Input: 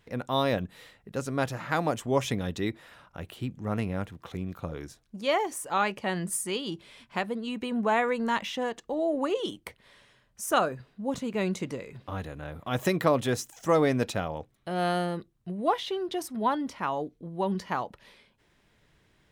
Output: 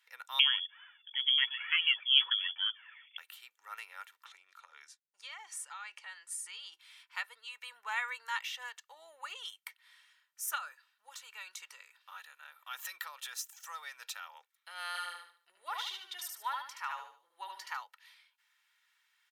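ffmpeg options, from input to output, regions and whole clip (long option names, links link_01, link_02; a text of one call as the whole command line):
ffmpeg -i in.wav -filter_complex "[0:a]asettb=1/sr,asplit=3[link_01][link_02][link_03];[link_01]atrim=end=0.394[link_04];[link_02]atrim=start=0.39:end=3.18,asetpts=PTS-STARTPTS,afade=type=in:duration=0.004:curve=qsin,afade=type=out:start_time=2.786:duration=0.004:curve=qsin,aphaser=in_gain=1:out_gain=1:delay=2.2:decay=0.68:speed=1.1:type=triangular,lowpass=frequency=3000:width_type=q:width=0.5098,lowpass=frequency=3000:width_type=q:width=0.6013,lowpass=frequency=3000:width_type=q:width=0.9,lowpass=frequency=3000:width_type=q:width=2.563,afreqshift=-3500[link_05];[link_03]atrim=start=3.176[link_06];[link_04][link_05]acrossfade=duration=0.004:curve1=hsin:curve2=qsin[link_07];[link_07][link_06]acrossfade=duration=0.004:curve1=qsin:curve2=hsin,asettb=1/sr,asplit=3[link_08][link_09][link_10];[link_08]atrim=end=4.254[link_11];[link_09]atrim=start=4.25:end=6.73,asetpts=PTS-STARTPTS,afade=type=in:duration=0.004:curve=qsin,afade=type=out:start_time=2.476:duration=0.004:curve=qsin,lowpass=frequency=9800:width=0.5412,lowpass=frequency=9800:width=1.3066,agate=range=-33dB:threshold=-48dB:ratio=3:release=100:detection=peak,acompressor=threshold=-33dB:ratio=6:attack=3.2:release=140:knee=1:detection=peak[link_12];[link_10]atrim=start=6.726[link_13];[link_11][link_12]acrossfade=duration=0.004:curve1=hsin:curve2=qsin[link_14];[link_14][link_13]acrossfade=duration=0.004:curve1=qsin:curve2=hsin,asettb=1/sr,asplit=3[link_15][link_16][link_17];[link_15]atrim=end=10.554[link_18];[link_16]atrim=start=10.55:end=14.34,asetpts=PTS-STARTPTS,afade=type=in:duration=0.004:curve=qsin,afade=type=out:start_time=3.786:duration=0.004:curve=qsin,equalizer=frequency=400:width=1.7:gain=-5.5,acompressor=threshold=-27dB:ratio=5:attack=3.2:release=140:knee=1:detection=peak,bandreject=frequency=2100:width=10[link_19];[link_17]atrim=start=14.336[link_20];[link_18][link_19]acrossfade=duration=0.004:curve1=hsin:curve2=qsin[link_21];[link_21][link_20]acrossfade=duration=0.004:curve1=qsin:curve2=hsin,asettb=1/sr,asplit=3[link_22][link_23][link_24];[link_22]atrim=end=14.874[link_25];[link_23]atrim=start=14.87:end=17.77,asetpts=PTS-STARTPTS,afade=type=in:duration=0.004:curve=qsin,afade=type=out:start_time=2.896:duration=0.004:curve=qsin,equalizer=frequency=100:width_type=o:width=1.9:gain=8.5,aecho=1:1:74|148|222|296:0.668|0.227|0.0773|0.0263,atrim=end_sample=127890[link_26];[link_24]atrim=start=17.766[link_27];[link_25][link_26]acrossfade=duration=0.004:curve1=hsin:curve2=qsin[link_28];[link_28][link_27]acrossfade=duration=0.004:curve1=qsin:curve2=hsin,highpass=frequency=1200:width=0.5412,highpass=frequency=1200:width=1.3066,equalizer=frequency=13000:width=4:gain=9.5,aecho=1:1:2.2:0.47,volume=-4.5dB" out.wav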